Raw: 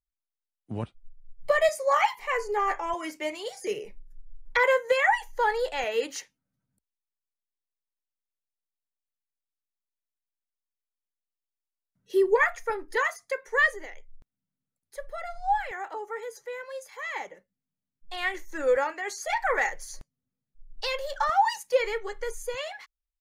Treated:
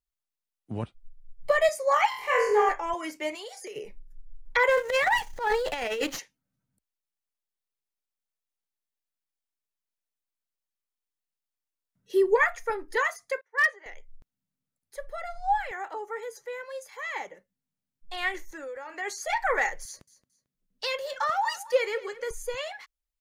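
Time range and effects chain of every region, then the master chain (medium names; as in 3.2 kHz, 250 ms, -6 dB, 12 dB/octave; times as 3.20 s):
2.09–2.69 s: high-pass 69 Hz + bass shelf 160 Hz +10.5 dB + flutter echo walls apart 4.1 m, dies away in 0.57 s
3.35–3.76 s: high-pass 420 Hz + compression 12:1, threshold -36 dBFS
4.69–6.19 s: companding laws mixed up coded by A + transient shaper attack -12 dB, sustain +10 dB + sliding maximum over 3 samples
13.41–13.86 s: band-pass 720–3000 Hz + overload inside the chain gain 17 dB + three bands expanded up and down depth 70%
18.51–18.95 s: compression 12:1, threshold -35 dBFS + high-pass 88 Hz 6 dB/octave
19.85–22.31 s: high-pass 120 Hz + peaking EQ 810 Hz -7 dB 0.27 oct + feedback delay 223 ms, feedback 28%, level -18 dB
whole clip: none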